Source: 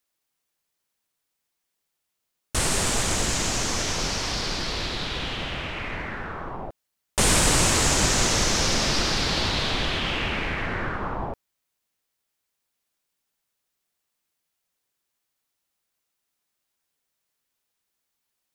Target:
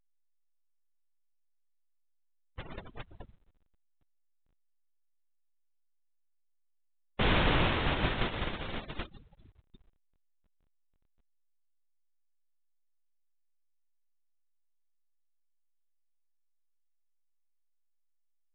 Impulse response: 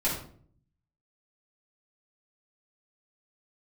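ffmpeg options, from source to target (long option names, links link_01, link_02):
-af "agate=range=-31dB:threshold=-20dB:ratio=16:detection=peak,afftfilt=real='re*gte(hypot(re,im),0.0141)':imag='im*gte(hypot(re,im),0.0141)':win_size=1024:overlap=0.75,volume=-4.5dB" -ar 8000 -c:a pcm_alaw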